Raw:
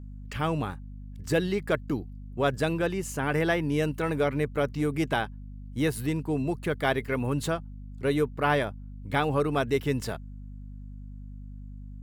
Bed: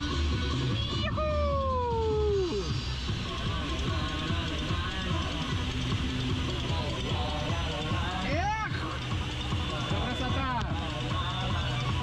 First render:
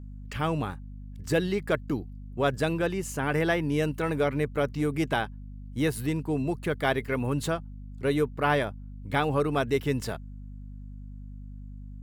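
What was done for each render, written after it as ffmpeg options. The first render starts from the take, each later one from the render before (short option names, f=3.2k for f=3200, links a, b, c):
-af anull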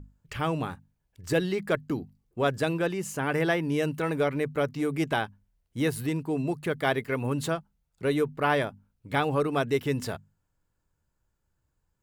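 -af "bandreject=f=50:t=h:w=6,bandreject=f=100:t=h:w=6,bandreject=f=150:t=h:w=6,bandreject=f=200:t=h:w=6,bandreject=f=250:t=h:w=6"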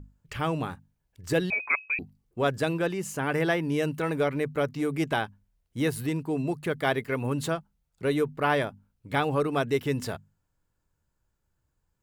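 -filter_complex "[0:a]asettb=1/sr,asplit=3[a][b][c];[a]atrim=end=1.504[d];[b]atrim=start=1.5:end=1.99,asetpts=PTS-STARTPTS,afade=t=in:d=0.004:c=qsin,afade=t=out:st=0.486:d=0.004:c=qsin,lowpass=f=2.3k:t=q:w=0.5098,lowpass=f=2.3k:t=q:w=0.6013,lowpass=f=2.3k:t=q:w=0.9,lowpass=f=2.3k:t=q:w=2.563,afreqshift=-2700[e];[c]atrim=start=1.986[f];[d][e]acrossfade=d=0.004:c1=hsin:c2=qsin[g];[g][f]acrossfade=d=0.004:c1=qsin:c2=hsin"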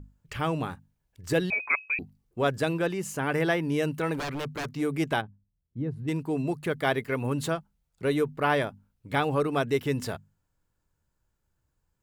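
-filter_complex "[0:a]asettb=1/sr,asplit=3[a][b][c];[a]atrim=end=4.144[d];[b]atrim=start=4.14:end=4.68,asetpts=PTS-STARTPTS,afade=t=in:d=0.004:c=qsin,afade=t=out:st=0.536:d=0.004:c=qsin,aeval=exprs='0.0447*(abs(mod(val(0)/0.0447+3,4)-2)-1)':c=same[e];[c]atrim=start=4.676[f];[d][e]acrossfade=d=0.004:c1=hsin:c2=qsin[g];[g][f]acrossfade=d=0.004:c1=qsin:c2=hsin,asplit=3[h][i][j];[h]afade=t=out:st=5.2:d=0.02[k];[i]bandpass=f=130:t=q:w=0.84,afade=t=in:st=5.2:d=0.02,afade=t=out:st=6.07:d=0.02[l];[j]afade=t=in:st=6.07:d=0.02[m];[k][l][m]amix=inputs=3:normalize=0"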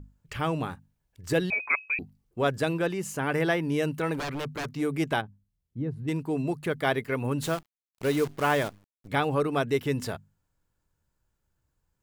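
-filter_complex "[0:a]asettb=1/sr,asplit=3[a][b][c];[a]atrim=end=7.424[d];[b]atrim=start=7.42:end=9.08,asetpts=PTS-STARTPTS,afade=t=in:d=0.004:c=qsin,afade=t=out:st=1.656:d=0.004:c=qsin,acrusher=bits=7:dc=4:mix=0:aa=0.000001[e];[c]atrim=start=9.076[f];[d][e]acrossfade=d=0.004:c1=hsin:c2=qsin[g];[g][f]acrossfade=d=0.004:c1=qsin:c2=hsin"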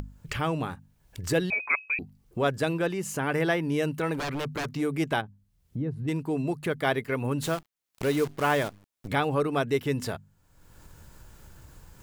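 -af "acompressor=mode=upward:threshold=-27dB:ratio=2.5"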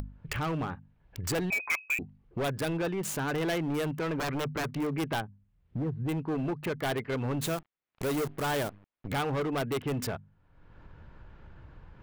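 -filter_complex "[0:a]acrossover=split=3100[a][b];[a]asoftclip=type=hard:threshold=-27.5dB[c];[b]acrusher=bits=5:mix=0:aa=0.000001[d];[c][d]amix=inputs=2:normalize=0"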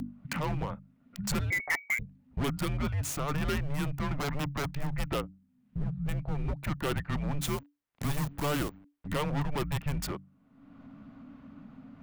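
-af "afreqshift=-290"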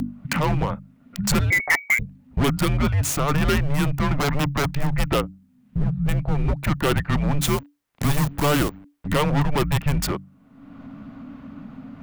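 -af "volume=10.5dB"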